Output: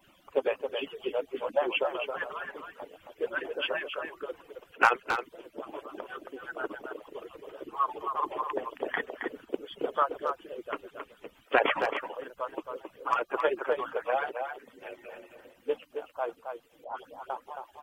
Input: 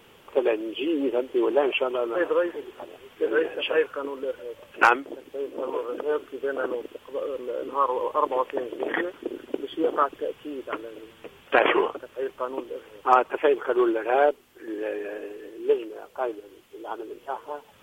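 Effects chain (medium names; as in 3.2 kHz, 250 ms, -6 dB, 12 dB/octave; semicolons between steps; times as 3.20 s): harmonic-percussive separation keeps percussive; 16.84–17.30 s: phase dispersion highs, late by 143 ms, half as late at 2.2 kHz; speakerphone echo 270 ms, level -6 dB; trim -3.5 dB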